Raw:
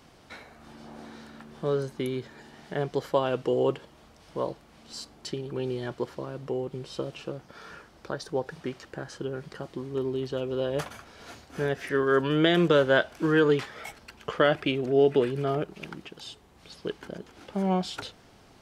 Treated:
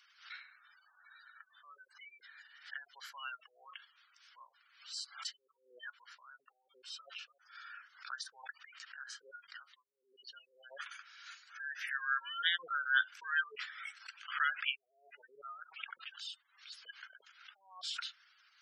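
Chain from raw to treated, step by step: spectral gate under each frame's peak -20 dB strong; elliptic high-pass 1.4 kHz, stop band 80 dB; swell ahead of each attack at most 130 dB/s; trim -2 dB

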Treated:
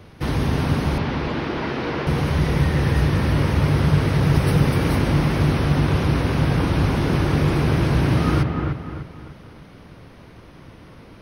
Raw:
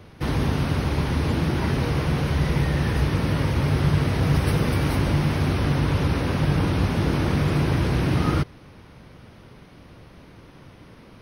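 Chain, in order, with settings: 0.98–2.07 s: three-band isolator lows -16 dB, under 220 Hz, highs -21 dB, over 5.2 kHz; feedback echo behind a low-pass 298 ms, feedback 38%, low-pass 2.3 kHz, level -4 dB; trim +1.5 dB

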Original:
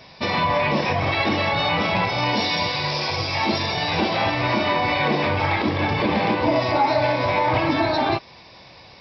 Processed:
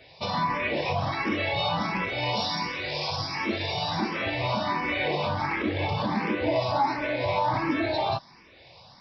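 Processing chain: barber-pole phaser +1.4 Hz; trim -3.5 dB

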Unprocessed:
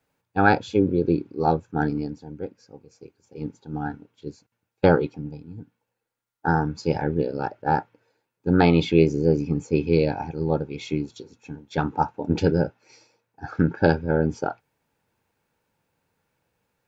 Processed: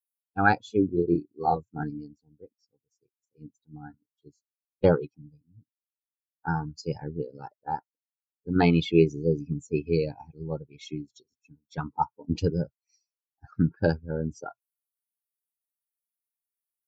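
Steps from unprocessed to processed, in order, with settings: expander on every frequency bin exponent 2; 0.90–1.83 s: doubling 35 ms -2.5 dB; 7.50–8.56 s: harmonic-percussive split harmonic -11 dB

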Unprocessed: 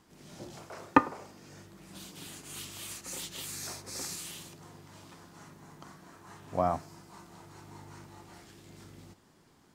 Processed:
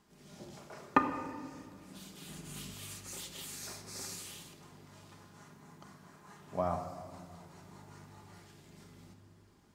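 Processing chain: 2.28–2.74 s: bass shelf 320 Hz +10.5 dB; simulated room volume 3400 m³, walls mixed, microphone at 1.3 m; trim -5.5 dB

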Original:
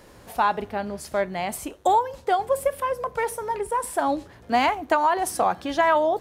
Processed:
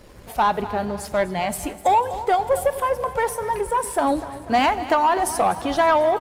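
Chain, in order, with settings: coarse spectral quantiser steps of 15 dB; bass shelf 94 Hz +9 dB; feedback delay 247 ms, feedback 52%, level -16 dB; on a send at -18.5 dB: reverberation RT60 2.6 s, pre-delay 84 ms; on the sum: waveshaping leveller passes 1

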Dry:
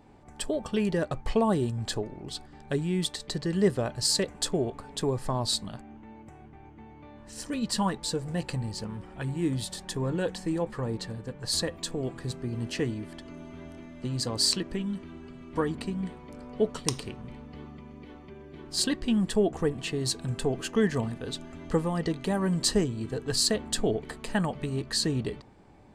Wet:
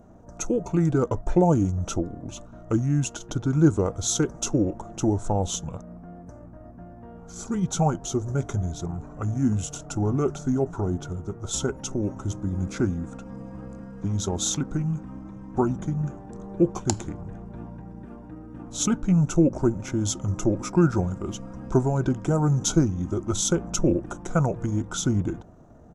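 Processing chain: high-order bell 3.7 kHz -13.5 dB; pitch shift -4 st; trim +5.5 dB

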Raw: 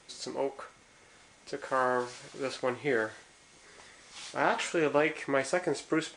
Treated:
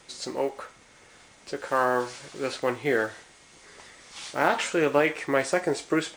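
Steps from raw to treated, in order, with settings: block-companded coder 7-bit; trim +4.5 dB

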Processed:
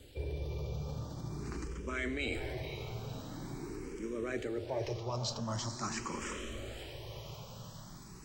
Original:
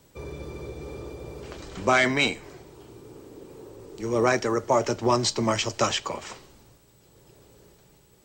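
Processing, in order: bass shelf 210 Hz +10.5 dB; reverse; compression 6:1, threshold -36 dBFS, peak gain reduction 20 dB; reverse; band noise 2.6–6.4 kHz -65 dBFS; transient shaper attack +2 dB, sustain +6 dB; on a send: echo that smears into a reverb 500 ms, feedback 58%, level -8 dB; on the sum: barber-pole phaser +0.45 Hz; trim +1.5 dB

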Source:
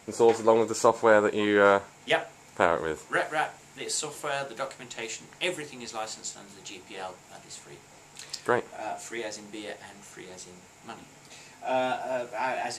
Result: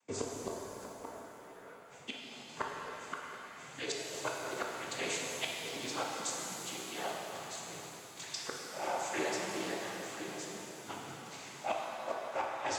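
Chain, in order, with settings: gate with hold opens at -41 dBFS; noise-vocoded speech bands 16; inverted gate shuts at -21 dBFS, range -34 dB; pitch-shifted reverb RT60 3 s, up +7 st, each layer -8 dB, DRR -1.5 dB; trim -2.5 dB

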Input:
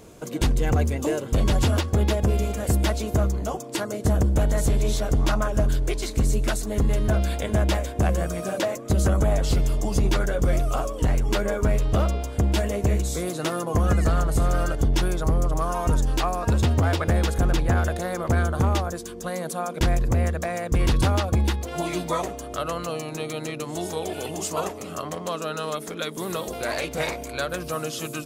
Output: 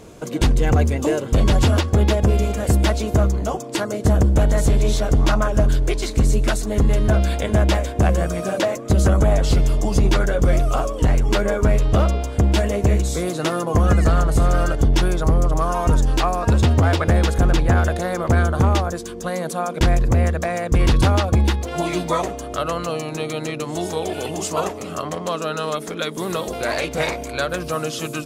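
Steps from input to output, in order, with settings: treble shelf 11 kHz -9.5 dB; trim +5 dB

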